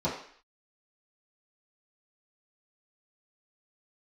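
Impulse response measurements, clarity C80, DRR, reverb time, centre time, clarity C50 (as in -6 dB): 9.0 dB, -11.0 dB, 0.55 s, 35 ms, 5.5 dB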